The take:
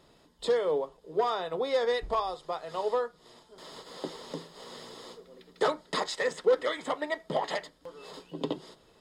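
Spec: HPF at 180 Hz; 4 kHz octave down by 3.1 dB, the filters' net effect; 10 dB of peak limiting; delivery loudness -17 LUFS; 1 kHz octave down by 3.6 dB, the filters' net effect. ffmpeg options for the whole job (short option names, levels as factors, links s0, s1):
-af "highpass=180,equalizer=f=1000:t=o:g=-4.5,equalizer=f=4000:t=o:g=-3.5,volume=10,alimiter=limit=0.531:level=0:latency=1"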